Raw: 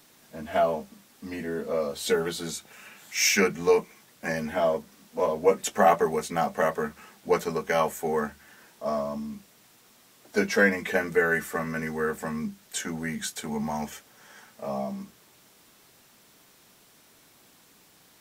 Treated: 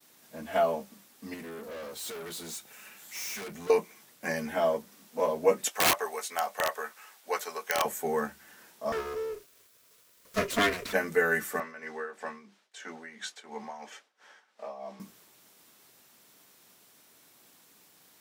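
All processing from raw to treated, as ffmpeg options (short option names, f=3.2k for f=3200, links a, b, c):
-filter_complex "[0:a]asettb=1/sr,asplit=3[a][b][c];[a]atrim=end=1.344[d];[b]atrim=start=1.34:end=3.7,asetpts=PTS-STARTPTS,afade=t=in:d=0.004:c=qsin,afade=t=out:st=2.356:d=0.004:c=qsin,highshelf=f=5.9k:g=4.5,aeval=exprs='(tanh(63.1*val(0)+0.45)-tanh(0.45))/63.1':c=same[e];[c]atrim=start=3.696[f];[d][e]acrossfade=d=0.004:c1=hsin:c2=qsin[g];[g][f]acrossfade=d=0.004:c1=qsin:c2=hsin,asettb=1/sr,asplit=3[h][i][j];[h]atrim=end=5.684[k];[i]atrim=start=5.68:end=7.85,asetpts=PTS-STARTPTS,afade=t=in:d=0.004:c=qsin,afade=t=out:st=2.166:d=0.004:c=qsin,highpass=690,aeval=exprs='(mod(6.68*val(0)+1,2)-1)/6.68':c=same[l];[j]atrim=start=7.846[m];[k][l]acrossfade=d=0.004:c1=hsin:c2=qsin[n];[n][m]acrossfade=d=0.004:c1=qsin:c2=hsin,asettb=1/sr,asplit=3[o][p][q];[o]atrim=end=8.924[r];[p]atrim=start=8.92:end=10.93,asetpts=PTS-STARTPTS,afade=t=in:d=0.004:c=qsin,afade=t=out:st=2.006:d=0.004:c=qsin,equalizer=f=220:w=4:g=11,aeval=exprs='abs(val(0))':c=same,asuperstop=centerf=820:order=8:qfactor=4.6[s];[q]atrim=start=10.926[t];[r][s]acrossfade=d=0.004:c1=hsin:c2=qsin[u];[u][t]acrossfade=d=0.004:c1=qsin:c2=hsin,asettb=1/sr,asplit=3[v][w][x];[v]atrim=end=11.604[y];[w]atrim=start=11.6:end=15,asetpts=PTS-STARTPTS,afade=t=in:d=0.004:c=qsin,afade=t=out:st=3.396:d=0.004:c=qsin,highpass=420,lowpass=4.5k,tremolo=f=3:d=0.68[z];[x]atrim=start=14.996[aa];[y][z]acrossfade=d=0.004:c1=hsin:c2=qsin[ab];[ab][aa]acrossfade=d=0.004:c1=qsin:c2=hsin,agate=range=-33dB:threshold=-55dB:ratio=3:detection=peak,highpass=f=170:p=1,highshelf=f=9.8k:g=6,volume=-2dB"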